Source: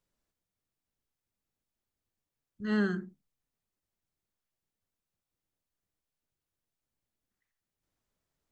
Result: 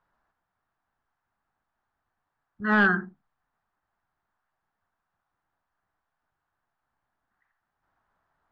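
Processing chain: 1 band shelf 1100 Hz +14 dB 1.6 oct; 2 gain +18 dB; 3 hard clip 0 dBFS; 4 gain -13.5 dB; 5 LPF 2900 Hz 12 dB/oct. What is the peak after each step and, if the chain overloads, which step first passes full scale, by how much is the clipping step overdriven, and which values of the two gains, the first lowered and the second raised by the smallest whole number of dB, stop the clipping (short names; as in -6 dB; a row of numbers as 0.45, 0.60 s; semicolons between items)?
-12.5, +5.5, 0.0, -13.5, -13.0 dBFS; step 2, 5.5 dB; step 2 +12 dB, step 4 -7.5 dB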